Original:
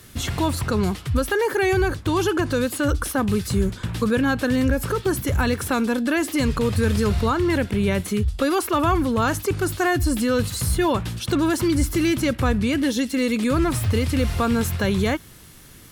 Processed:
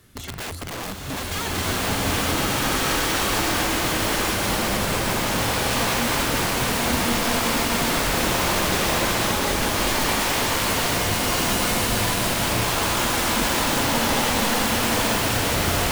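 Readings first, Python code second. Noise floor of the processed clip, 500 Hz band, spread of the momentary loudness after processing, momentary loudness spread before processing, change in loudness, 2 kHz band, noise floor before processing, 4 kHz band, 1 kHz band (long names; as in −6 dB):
−31 dBFS, −3.0 dB, 3 LU, 3 LU, +1.0 dB, +4.0 dB, −45 dBFS, +9.0 dB, +3.5 dB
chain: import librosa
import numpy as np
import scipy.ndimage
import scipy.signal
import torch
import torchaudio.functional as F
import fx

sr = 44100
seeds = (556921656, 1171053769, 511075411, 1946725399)

y = fx.high_shelf(x, sr, hz=3000.0, db=-4.5)
y = (np.mod(10.0 ** (19.5 / 20.0) * y + 1.0, 2.0) - 1.0) / 10.0 ** (19.5 / 20.0)
y = fx.rev_bloom(y, sr, seeds[0], attack_ms=1620, drr_db=-9.5)
y = y * librosa.db_to_amplitude(-7.0)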